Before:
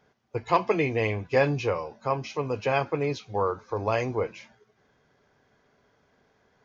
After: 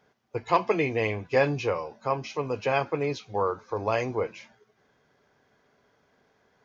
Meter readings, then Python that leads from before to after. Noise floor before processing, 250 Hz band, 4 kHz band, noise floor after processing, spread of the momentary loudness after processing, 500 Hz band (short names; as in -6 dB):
-68 dBFS, -1.0 dB, 0.0 dB, -68 dBFS, 7 LU, -0.5 dB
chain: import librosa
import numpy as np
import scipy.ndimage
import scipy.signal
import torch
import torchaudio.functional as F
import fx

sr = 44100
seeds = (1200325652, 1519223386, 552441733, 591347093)

y = fx.low_shelf(x, sr, hz=110.0, db=-6.5)